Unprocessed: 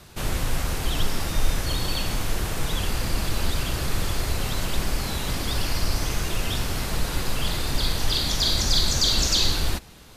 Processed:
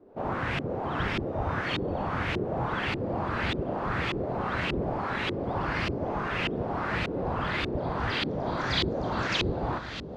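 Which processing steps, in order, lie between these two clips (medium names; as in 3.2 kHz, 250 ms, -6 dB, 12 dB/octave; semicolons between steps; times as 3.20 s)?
spectral gate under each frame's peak -10 dB weak; echo that smears into a reverb 974 ms, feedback 66%, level -11 dB; LFO low-pass saw up 1.7 Hz 350–2800 Hz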